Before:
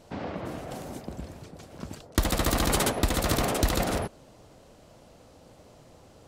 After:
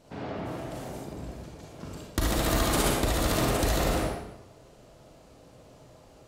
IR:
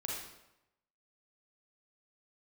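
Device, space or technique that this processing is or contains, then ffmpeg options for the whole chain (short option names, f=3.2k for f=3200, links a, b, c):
bathroom: -filter_complex "[1:a]atrim=start_sample=2205[a];[0:a][a]afir=irnorm=-1:irlink=0,volume=-1.5dB"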